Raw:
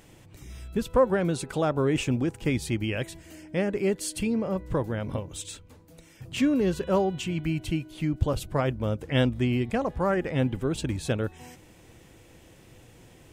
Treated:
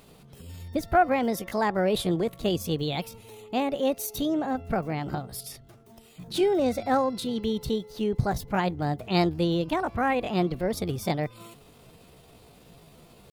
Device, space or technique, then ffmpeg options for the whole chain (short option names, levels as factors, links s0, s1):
chipmunk voice: -af "asetrate=60591,aresample=44100,atempo=0.727827"